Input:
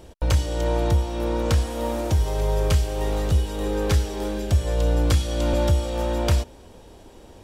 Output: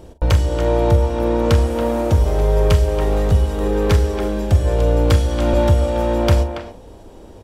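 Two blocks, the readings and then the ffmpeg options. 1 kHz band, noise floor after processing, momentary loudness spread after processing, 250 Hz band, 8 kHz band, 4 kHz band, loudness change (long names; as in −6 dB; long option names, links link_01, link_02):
+6.5 dB, −41 dBFS, 4 LU, +6.5 dB, −0.5 dB, +2.0 dB, +6.0 dB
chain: -filter_complex "[0:a]bandreject=frequency=71.65:width_type=h:width=4,bandreject=frequency=143.3:width_type=h:width=4,bandreject=frequency=214.95:width_type=h:width=4,bandreject=frequency=286.6:width_type=h:width=4,bandreject=frequency=358.25:width_type=h:width=4,bandreject=frequency=429.9:width_type=h:width=4,bandreject=frequency=501.55:width_type=h:width=4,bandreject=frequency=573.2:width_type=h:width=4,bandreject=frequency=644.85:width_type=h:width=4,bandreject=frequency=716.5:width_type=h:width=4,bandreject=frequency=788.15:width_type=h:width=4,bandreject=frequency=859.8:width_type=h:width=4,bandreject=frequency=931.45:width_type=h:width=4,asplit=2[link_01][link_02];[link_02]adynamicsmooth=sensitivity=3:basefreq=1300,volume=1dB[link_03];[link_01][link_03]amix=inputs=2:normalize=0,asplit=2[link_04][link_05];[link_05]adelay=43,volume=-12dB[link_06];[link_04][link_06]amix=inputs=2:normalize=0,asplit=2[link_07][link_08];[link_08]adelay=280,highpass=300,lowpass=3400,asoftclip=type=hard:threshold=-12dB,volume=-8dB[link_09];[link_07][link_09]amix=inputs=2:normalize=0"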